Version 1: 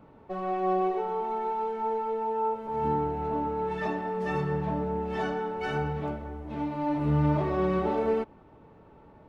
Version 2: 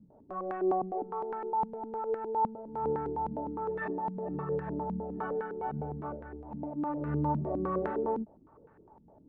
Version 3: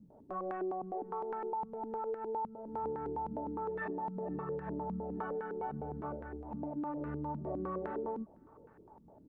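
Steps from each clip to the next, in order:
step-sequenced low-pass 9.8 Hz 210–1600 Hz; trim -9 dB
compression, threshold -35 dBFS, peak gain reduction 10.5 dB; hum notches 50/100/150 Hz; echo from a far wall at 87 m, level -30 dB

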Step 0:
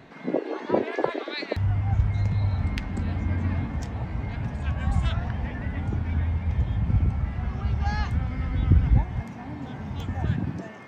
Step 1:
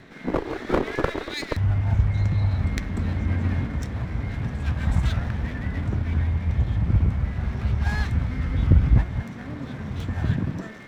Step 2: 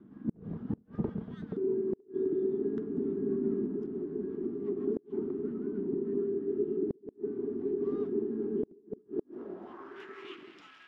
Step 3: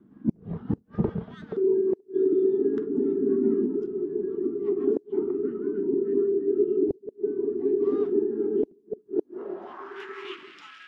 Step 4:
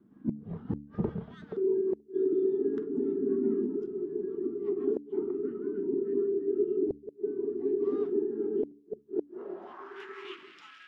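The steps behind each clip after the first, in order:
comb filter that takes the minimum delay 0.52 ms; trim +2.5 dB
frequency shift -480 Hz; band-pass sweep 220 Hz -> 2.7 kHz, 9.07–10.29 s; inverted gate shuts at -20 dBFS, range -33 dB
spectral noise reduction 10 dB; trim +8.5 dB
de-hum 72.4 Hz, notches 4; trim -5 dB

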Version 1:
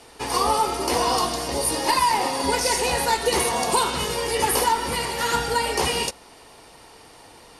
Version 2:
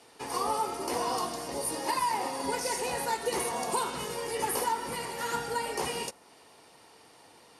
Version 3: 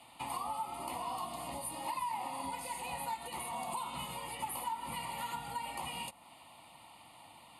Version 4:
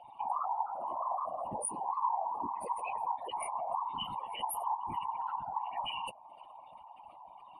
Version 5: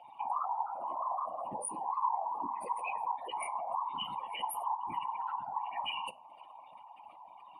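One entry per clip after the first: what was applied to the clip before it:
high-pass 120 Hz 12 dB/octave; dynamic bell 3.7 kHz, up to -5 dB, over -41 dBFS, Q 0.99; trim -8.5 dB
compression, threshold -37 dBFS, peak gain reduction 11.5 dB; static phaser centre 1.6 kHz, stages 6; trim +3 dB
spectral contrast enhancement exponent 3.5; whisper effect; trim +4.5 dB
reverberation RT60 0.45 s, pre-delay 3 ms, DRR 16.5 dB; trim -1.5 dB

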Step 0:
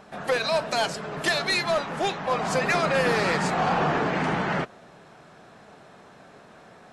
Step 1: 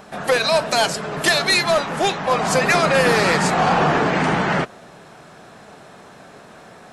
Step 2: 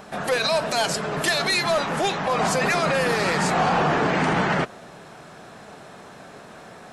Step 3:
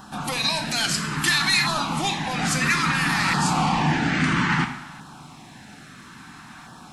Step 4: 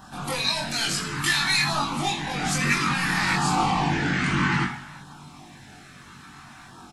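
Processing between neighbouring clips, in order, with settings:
treble shelf 8 kHz +9 dB; trim +6.5 dB
peak limiter -13.5 dBFS, peak gain reduction 8 dB
high-order bell 510 Hz -15.5 dB 1 oct; two-slope reverb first 0.76 s, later 2.5 s, DRR 5.5 dB; LFO notch saw down 0.6 Hz 400–2300 Hz; trim +2 dB
chorus voices 4, 0.38 Hz, delay 22 ms, depth 1.6 ms; doubling 21 ms -5.5 dB

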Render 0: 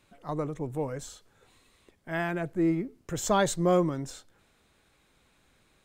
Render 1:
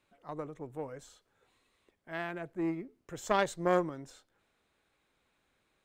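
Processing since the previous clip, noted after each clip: Chebyshev shaper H 3 -14 dB, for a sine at -12 dBFS; tone controls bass -6 dB, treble -5 dB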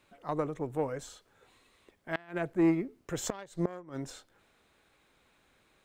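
inverted gate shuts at -23 dBFS, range -25 dB; trim +8 dB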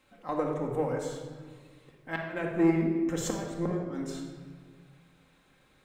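simulated room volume 1600 m³, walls mixed, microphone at 2.1 m; trim -1 dB

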